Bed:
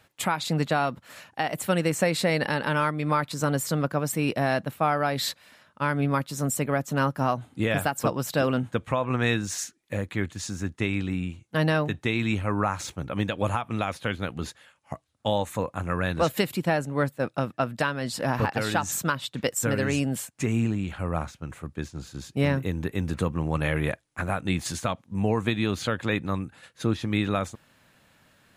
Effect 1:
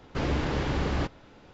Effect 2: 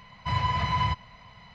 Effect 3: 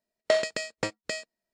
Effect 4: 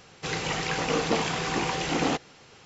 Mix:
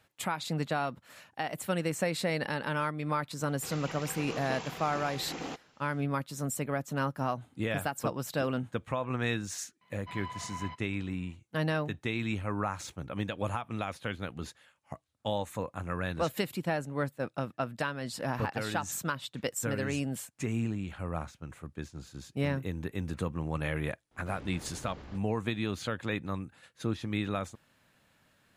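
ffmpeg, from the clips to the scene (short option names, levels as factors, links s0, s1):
-filter_complex "[0:a]volume=0.447[s0];[2:a]highpass=200,lowpass=4300[s1];[1:a]alimiter=limit=0.0631:level=0:latency=1:release=71[s2];[4:a]atrim=end=2.65,asetpts=PTS-STARTPTS,volume=0.211,afade=t=in:d=0.004:c=hsin,afade=t=out:st=2.646:d=0.004:c=hsin,adelay=3390[s3];[s1]atrim=end=1.54,asetpts=PTS-STARTPTS,volume=0.188,afade=t=in:d=0.004:c=hsin,afade=t=out:st=1.536:d=0.004:c=hsin,adelay=9810[s4];[s2]atrim=end=1.53,asetpts=PTS-STARTPTS,volume=0.168,afade=t=in:d=0.004:c=hsin,afade=t=out:st=1.526:d=0.004:c=hsin,adelay=24110[s5];[s0][s3][s4][s5]amix=inputs=4:normalize=0"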